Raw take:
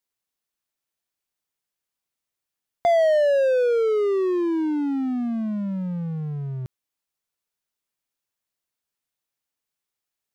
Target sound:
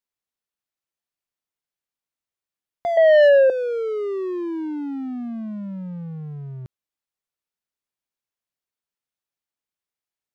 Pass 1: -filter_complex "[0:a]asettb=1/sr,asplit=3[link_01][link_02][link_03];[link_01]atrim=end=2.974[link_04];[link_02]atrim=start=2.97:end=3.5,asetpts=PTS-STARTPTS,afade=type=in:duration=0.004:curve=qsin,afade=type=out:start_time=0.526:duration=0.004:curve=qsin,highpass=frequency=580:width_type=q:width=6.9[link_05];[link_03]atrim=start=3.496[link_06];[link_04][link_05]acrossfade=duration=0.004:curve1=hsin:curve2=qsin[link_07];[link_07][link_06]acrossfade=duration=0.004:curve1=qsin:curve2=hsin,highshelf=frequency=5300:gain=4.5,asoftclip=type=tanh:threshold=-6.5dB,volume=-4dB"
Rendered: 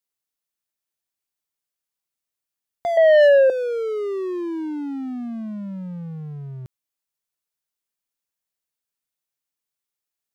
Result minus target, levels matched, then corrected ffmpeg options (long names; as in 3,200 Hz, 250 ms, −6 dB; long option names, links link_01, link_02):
8,000 Hz band +5.0 dB
-filter_complex "[0:a]asettb=1/sr,asplit=3[link_01][link_02][link_03];[link_01]atrim=end=2.974[link_04];[link_02]atrim=start=2.97:end=3.5,asetpts=PTS-STARTPTS,afade=type=in:duration=0.004:curve=qsin,afade=type=out:start_time=0.526:duration=0.004:curve=qsin,highpass=frequency=580:width_type=q:width=6.9[link_05];[link_03]atrim=start=3.496[link_06];[link_04][link_05]acrossfade=duration=0.004:curve1=hsin:curve2=qsin[link_07];[link_07][link_06]acrossfade=duration=0.004:curve1=qsin:curve2=hsin,highshelf=frequency=5300:gain=-5,asoftclip=type=tanh:threshold=-6.5dB,volume=-4dB"